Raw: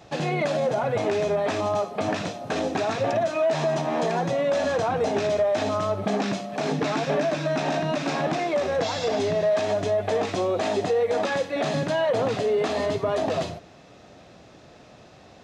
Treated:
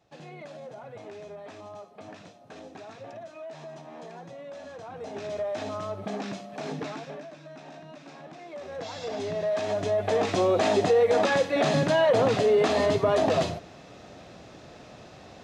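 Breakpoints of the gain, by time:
4.78 s -18.5 dB
5.43 s -8.5 dB
6.81 s -8.5 dB
7.31 s -20 dB
8.33 s -20 dB
8.88 s -10.5 dB
10.46 s +2 dB

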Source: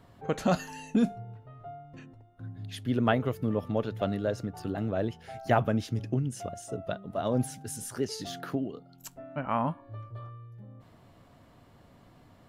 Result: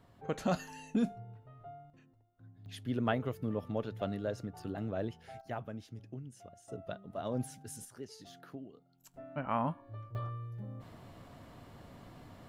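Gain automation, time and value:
-6 dB
from 1.9 s -15 dB
from 2.66 s -6.5 dB
from 5.41 s -16 dB
from 6.68 s -8 dB
from 7.85 s -15 dB
from 9.14 s -4 dB
from 10.15 s +4 dB

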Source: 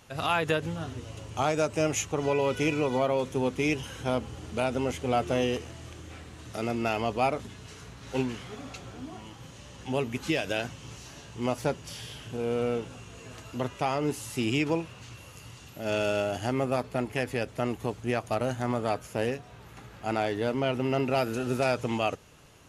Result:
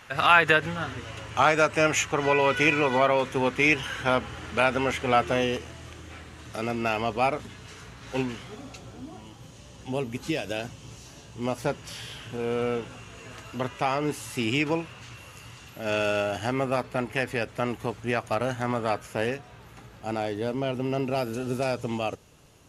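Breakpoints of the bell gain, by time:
bell 1700 Hz 1.9 oct
5.08 s +13.5 dB
5.52 s +4.5 dB
8.23 s +4.5 dB
8.67 s -3.5 dB
11.29 s -3.5 dB
11.86 s +5.5 dB
19.3 s +5.5 dB
20.09 s -4 dB

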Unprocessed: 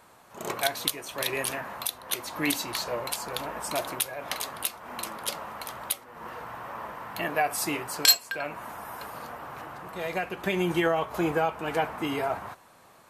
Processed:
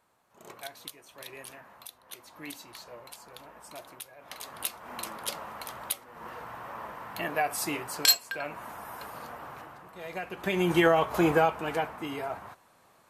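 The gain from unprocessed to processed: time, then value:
4.18 s -15 dB
4.67 s -2.5 dB
9.48 s -2.5 dB
9.93 s -10 dB
10.81 s +3 dB
11.4 s +3 dB
11.99 s -6 dB

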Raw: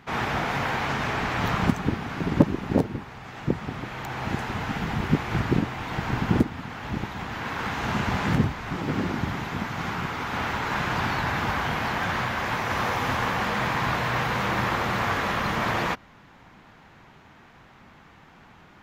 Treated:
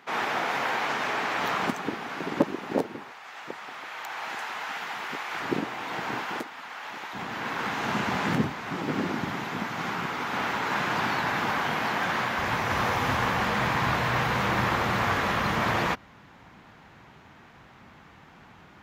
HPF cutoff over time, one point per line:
350 Hz
from 3.12 s 780 Hz
from 5.42 s 320 Hz
from 6.21 s 720 Hz
from 7.13 s 190 Hz
from 12.38 s 45 Hz

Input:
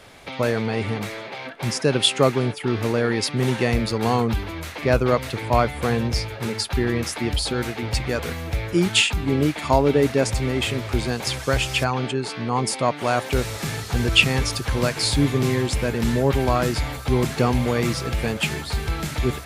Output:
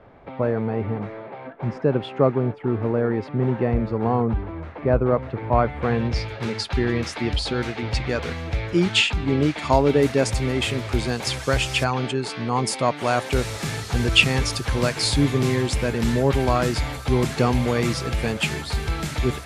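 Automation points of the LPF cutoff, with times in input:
5.27 s 1100 Hz
5.83 s 2000 Hz
6.33 s 5300 Hz
9.39 s 5300 Hz
9.97 s 11000 Hz

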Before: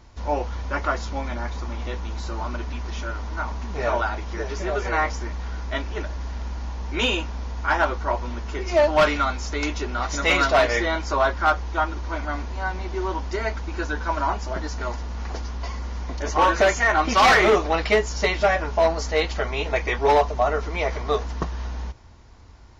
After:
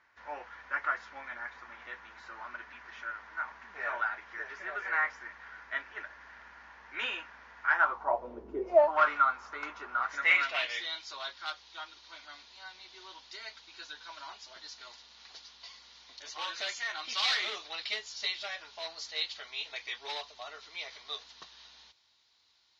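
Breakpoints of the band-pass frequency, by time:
band-pass, Q 3.4
7.72 s 1700 Hz
8.52 s 320 Hz
8.99 s 1300 Hz
9.96 s 1300 Hz
10.88 s 3900 Hz

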